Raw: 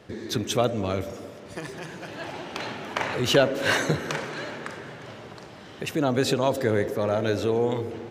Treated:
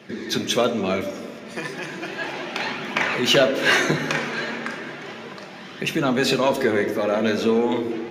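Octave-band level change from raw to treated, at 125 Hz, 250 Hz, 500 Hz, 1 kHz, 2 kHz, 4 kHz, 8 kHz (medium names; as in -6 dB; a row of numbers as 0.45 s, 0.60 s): -2.0 dB, +5.0 dB, +3.0 dB, +4.0 dB, +7.0 dB, +6.5 dB, +3.5 dB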